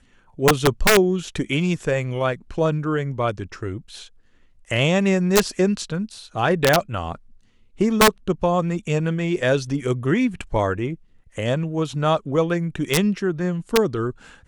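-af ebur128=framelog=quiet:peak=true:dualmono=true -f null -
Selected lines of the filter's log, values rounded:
Integrated loudness:
  I:         -18.5 LUFS
  Threshold: -29.0 LUFS
Loudness range:
  LRA:         3.0 LU
  Threshold: -39.3 LUFS
  LRA low:   -21.0 LUFS
  LRA high:  -18.0 LUFS
True peak:
  Peak:       -4.0 dBFS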